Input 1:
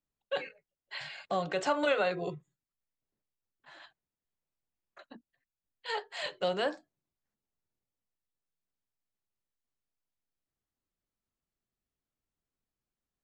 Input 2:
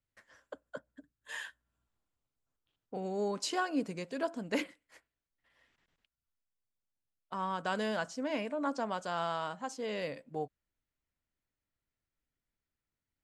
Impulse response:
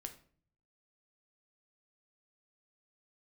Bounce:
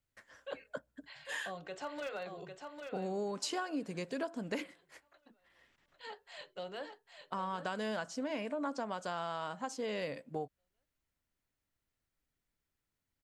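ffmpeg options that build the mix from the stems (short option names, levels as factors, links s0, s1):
-filter_complex "[0:a]aeval=exprs='0.1*(abs(mod(val(0)/0.1+3,4)-2)-1)':c=same,adelay=150,volume=0.237,asplit=2[s0][s1];[s1]volume=0.501[s2];[1:a]volume=1.33[s3];[s2]aecho=0:1:801|1602|2403|3204|4005:1|0.32|0.102|0.0328|0.0105[s4];[s0][s3][s4]amix=inputs=3:normalize=0,acompressor=threshold=0.02:ratio=6"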